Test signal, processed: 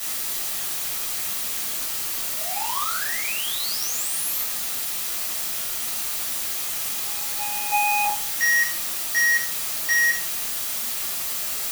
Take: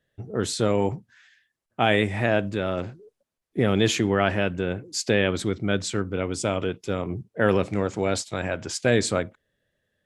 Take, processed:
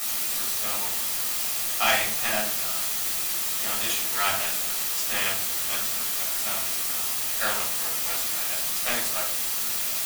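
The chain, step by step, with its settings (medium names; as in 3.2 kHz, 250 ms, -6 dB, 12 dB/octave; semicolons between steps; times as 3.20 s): resonant low shelf 590 Hz -11.5 dB, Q 1.5; power-law waveshaper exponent 2; word length cut 6-bit, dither triangular; tilt EQ +2 dB/octave; simulated room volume 500 m³, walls furnished, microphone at 6.4 m; trim -5.5 dB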